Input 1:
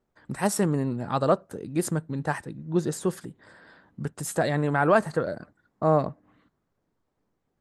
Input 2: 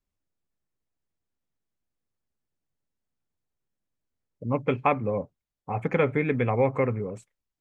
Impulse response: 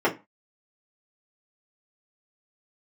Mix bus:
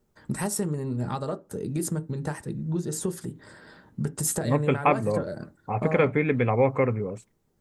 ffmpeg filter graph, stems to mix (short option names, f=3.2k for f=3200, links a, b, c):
-filter_complex "[0:a]acompressor=threshold=-31dB:ratio=10,bass=f=250:g=8,treble=f=4k:g=10,volume=0dB,asplit=2[a][b];[b]volume=-22dB[c];[1:a]volume=1.5dB[d];[2:a]atrim=start_sample=2205[e];[c][e]afir=irnorm=-1:irlink=0[f];[a][d][f]amix=inputs=3:normalize=0"